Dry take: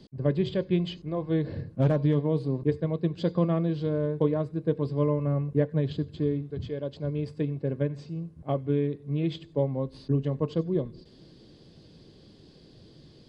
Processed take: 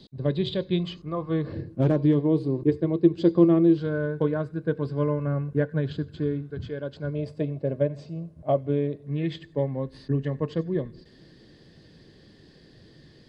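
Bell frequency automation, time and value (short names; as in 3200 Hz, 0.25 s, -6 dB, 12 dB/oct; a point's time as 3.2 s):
bell +15 dB 0.29 oct
3800 Hz
from 0.83 s 1200 Hz
from 1.53 s 340 Hz
from 3.78 s 1500 Hz
from 7.14 s 620 Hz
from 9.07 s 1800 Hz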